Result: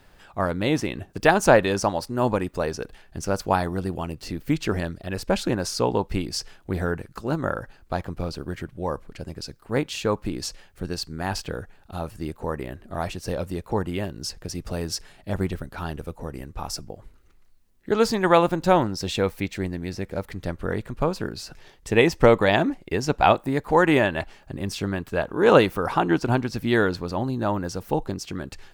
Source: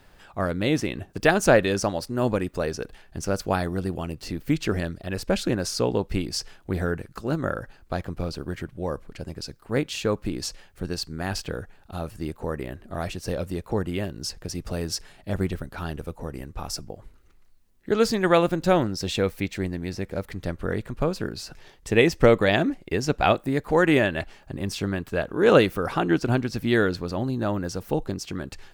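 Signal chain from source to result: dynamic EQ 920 Hz, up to +8 dB, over -42 dBFS, Q 2.4

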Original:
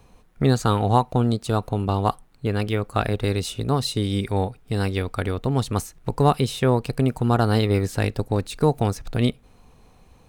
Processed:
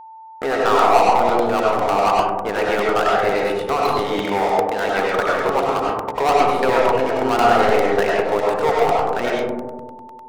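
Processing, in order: Butterworth band-pass 1100 Hz, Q 0.73; sample leveller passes 5; reverb RT60 1.5 s, pre-delay 55 ms, DRR -4.5 dB; whine 890 Hz -30 dBFS; crackling interface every 0.10 s, samples 64, repeat, from 0.79; gain -7 dB

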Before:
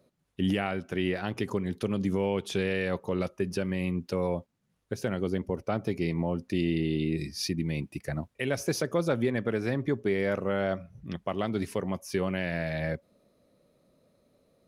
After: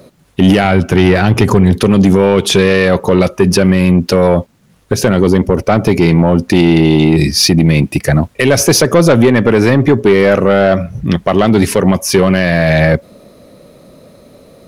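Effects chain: 0.64–1.81 bell 86 Hz +7.5 dB 1.9 oct; soft clip -23 dBFS, distortion -14 dB; maximiser +27 dB; gain -1 dB

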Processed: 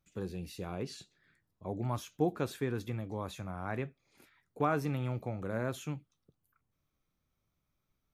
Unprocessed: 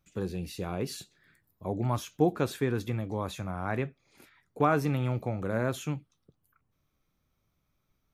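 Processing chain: 0.83–1.69 LPF 7300 Hz 12 dB/oct; gain -5.5 dB

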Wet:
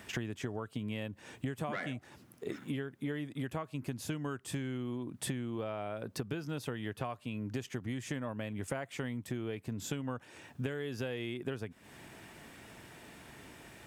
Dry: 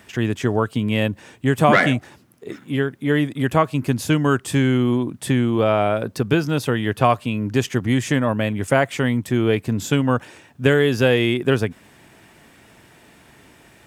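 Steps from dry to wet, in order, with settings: compressor 16:1, threshold -31 dBFS, peak gain reduction 21.5 dB; gain -3 dB

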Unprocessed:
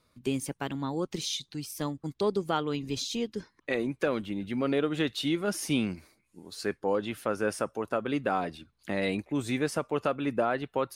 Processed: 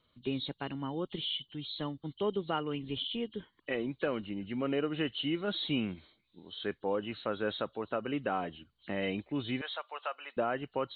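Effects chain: nonlinear frequency compression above 2800 Hz 4:1; 9.61–10.37 HPF 700 Hz 24 dB/oct; gain -4.5 dB

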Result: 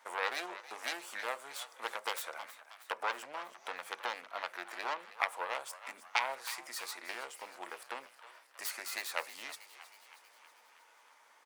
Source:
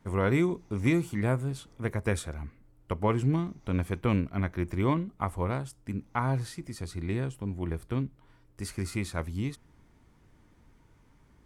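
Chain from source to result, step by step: self-modulated delay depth 0.4 ms; compressor 4:1, threshold -34 dBFS, peak gain reduction 12 dB; HPF 650 Hz 24 dB/oct; frequency-shifting echo 0.318 s, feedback 60%, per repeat +100 Hz, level -14.5 dB; on a send at -15.5 dB: reverb RT60 0.30 s, pre-delay 3 ms; on the sum: gain +7.5 dB

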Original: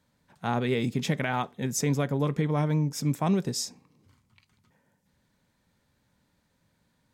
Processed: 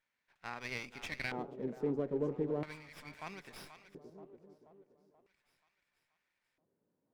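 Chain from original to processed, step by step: split-band echo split 530 Hz, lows 0.285 s, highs 0.481 s, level -10.5 dB; LFO band-pass square 0.38 Hz 390–2300 Hz; running maximum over 5 samples; gain -2 dB

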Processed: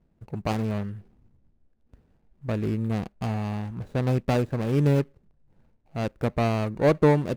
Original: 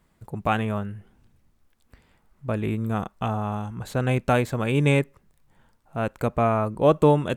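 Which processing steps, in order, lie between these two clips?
median filter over 41 samples

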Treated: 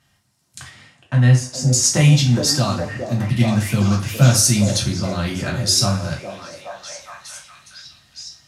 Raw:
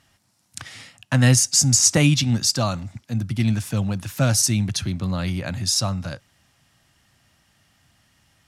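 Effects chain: 0.68–1.66 LPF 2000 Hz 6 dB/oct; delay with a stepping band-pass 0.415 s, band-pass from 430 Hz, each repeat 0.7 oct, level -1 dB; vocal rider 2 s; two-slope reverb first 0.32 s, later 1.7 s, from -22 dB, DRR -1.5 dB; gain -2 dB

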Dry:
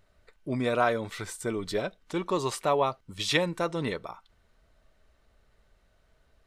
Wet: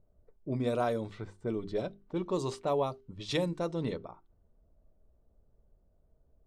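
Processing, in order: notches 50/100/150/200/250/300/350/400 Hz; low-pass opened by the level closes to 760 Hz, open at -22.5 dBFS; bell 1800 Hz -13 dB 2.3 oct

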